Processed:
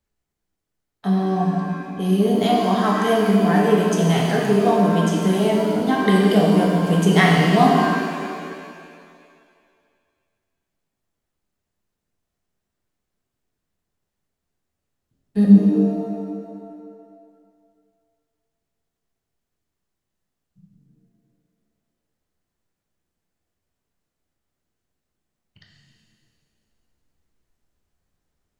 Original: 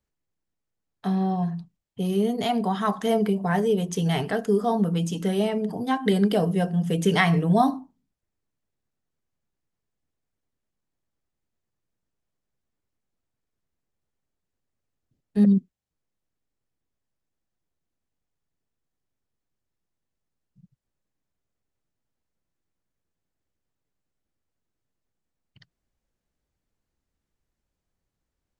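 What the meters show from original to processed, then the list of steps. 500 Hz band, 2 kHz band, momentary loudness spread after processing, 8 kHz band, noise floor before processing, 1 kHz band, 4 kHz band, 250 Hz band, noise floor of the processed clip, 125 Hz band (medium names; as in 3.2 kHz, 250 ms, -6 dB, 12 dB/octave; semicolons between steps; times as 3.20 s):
+6.5 dB, +7.5 dB, 14 LU, no reading, -84 dBFS, +7.0 dB, +6.5 dB, +7.0 dB, -81 dBFS, +6.0 dB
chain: pitch-shifted reverb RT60 2.1 s, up +7 st, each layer -8 dB, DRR -2 dB; trim +1.5 dB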